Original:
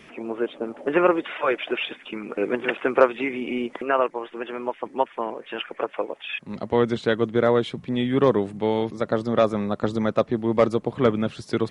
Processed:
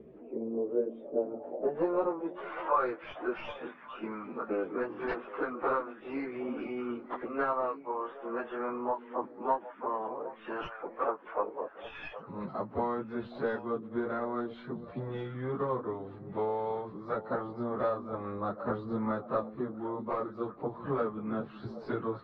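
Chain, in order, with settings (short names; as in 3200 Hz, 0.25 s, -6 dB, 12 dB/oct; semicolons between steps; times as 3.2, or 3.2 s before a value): tracing distortion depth 0.082 ms; bell 4200 Hz +13 dB 0.56 oct; compressor 6:1, threshold -25 dBFS, peak gain reduction 14.5 dB; plain phase-vocoder stretch 1.9×; low-pass sweep 450 Hz -> 1200 Hz, 0.6–2.81; on a send: delay with a stepping band-pass 0.383 s, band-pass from 230 Hz, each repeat 1.4 oct, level -9.5 dB; on the sum: gain -3 dB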